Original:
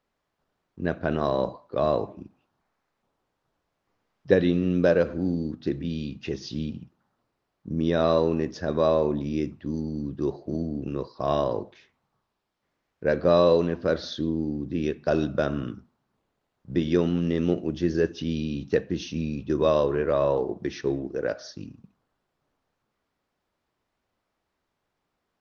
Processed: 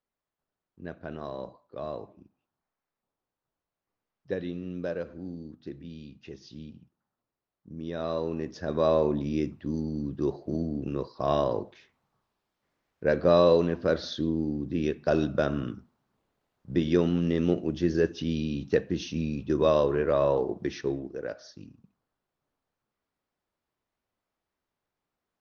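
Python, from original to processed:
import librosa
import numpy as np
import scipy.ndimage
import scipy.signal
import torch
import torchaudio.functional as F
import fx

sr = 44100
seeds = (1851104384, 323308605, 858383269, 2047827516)

y = fx.gain(x, sr, db=fx.line((7.8, -12.5), (8.97, -1.0), (20.7, -1.0), (21.25, -7.5)))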